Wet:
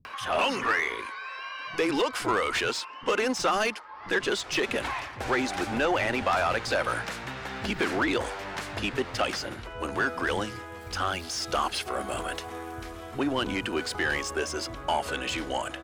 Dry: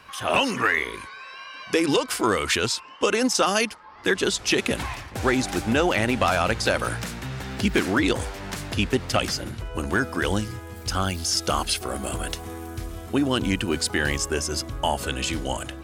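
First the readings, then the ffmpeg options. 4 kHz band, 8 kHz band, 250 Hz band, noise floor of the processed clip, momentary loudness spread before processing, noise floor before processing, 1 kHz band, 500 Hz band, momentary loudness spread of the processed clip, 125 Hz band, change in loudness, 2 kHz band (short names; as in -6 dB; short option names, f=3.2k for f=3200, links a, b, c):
-5.5 dB, -9.0 dB, -7.0 dB, -42 dBFS, 11 LU, -41 dBFS, -1.5 dB, -3.5 dB, 10 LU, -10.0 dB, -4.5 dB, -2.5 dB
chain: -filter_complex "[0:a]acompressor=mode=upward:threshold=-36dB:ratio=2.5,asplit=2[a][b];[b]highpass=f=720:p=1,volume=16dB,asoftclip=type=tanh:threshold=-9.5dB[c];[a][c]amix=inputs=2:normalize=0,lowpass=f=2k:p=1,volume=-6dB,acrossover=split=180[d][e];[e]adelay=50[f];[d][f]amix=inputs=2:normalize=0,volume=-6dB"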